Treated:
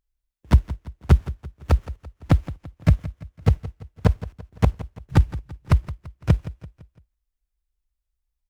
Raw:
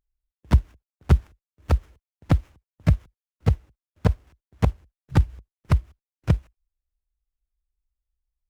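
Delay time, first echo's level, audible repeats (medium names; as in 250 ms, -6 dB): 169 ms, -16.0 dB, 3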